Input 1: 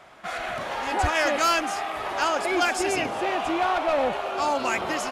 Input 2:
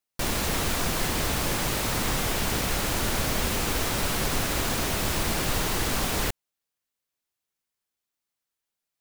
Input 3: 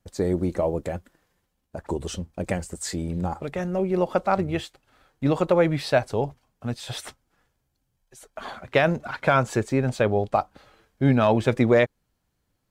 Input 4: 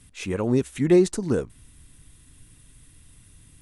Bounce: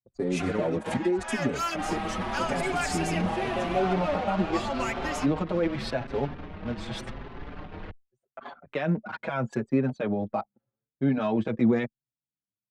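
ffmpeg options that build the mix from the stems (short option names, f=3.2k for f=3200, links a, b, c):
-filter_complex "[0:a]adelay=150,volume=-1.5dB[a];[1:a]lowpass=3.3k,adelay=1600,volume=-7.5dB[b];[2:a]highpass=f=120:w=0.5412,highpass=f=120:w=1.3066,volume=-0.5dB[c];[3:a]adelay=150,volume=2dB[d];[a][d]amix=inputs=2:normalize=0,acompressor=threshold=-22dB:ratio=16,volume=0dB[e];[b][c]amix=inputs=2:normalize=0,highshelf=f=9.7k:g=-9.5,alimiter=limit=-15.5dB:level=0:latency=1:release=50,volume=0dB[f];[e][f]amix=inputs=2:normalize=0,anlmdn=3.98,adynamicequalizer=threshold=0.00794:dfrequency=220:dqfactor=2.8:tfrequency=220:tqfactor=2.8:attack=5:release=100:ratio=0.375:range=3.5:mode=boostabove:tftype=bell,asplit=2[g][h];[h]adelay=5.6,afreqshift=0.85[i];[g][i]amix=inputs=2:normalize=1"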